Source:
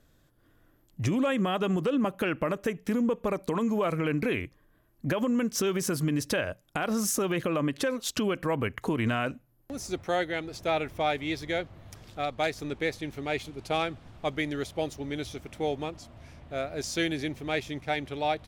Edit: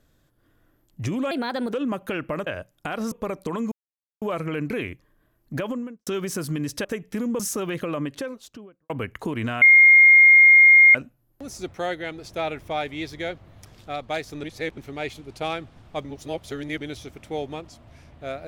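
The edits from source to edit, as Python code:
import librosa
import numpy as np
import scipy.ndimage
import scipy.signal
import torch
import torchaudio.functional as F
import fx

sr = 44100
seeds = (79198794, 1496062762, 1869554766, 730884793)

y = fx.studio_fade_out(x, sr, start_s=5.13, length_s=0.46)
y = fx.studio_fade_out(y, sr, start_s=7.53, length_s=0.99)
y = fx.edit(y, sr, fx.speed_span(start_s=1.31, length_s=0.55, speed=1.29),
    fx.swap(start_s=2.59, length_s=0.55, other_s=6.37, other_length_s=0.65),
    fx.insert_silence(at_s=3.74, length_s=0.5),
    fx.insert_tone(at_s=9.24, length_s=1.33, hz=2130.0, db=-8.5),
    fx.reverse_span(start_s=12.73, length_s=0.34),
    fx.reverse_span(start_s=14.34, length_s=0.76), tone=tone)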